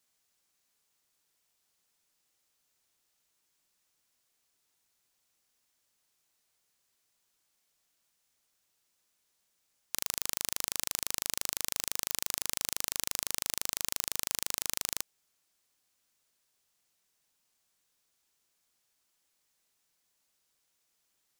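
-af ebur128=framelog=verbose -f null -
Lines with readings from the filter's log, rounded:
Integrated loudness:
  I:         -32.7 LUFS
  Threshold: -42.7 LUFS
Loudness range:
  LRA:         8.9 LU
  Threshold: -54.3 LUFS
  LRA low:   -41.2 LUFS
  LRA high:  -32.3 LUFS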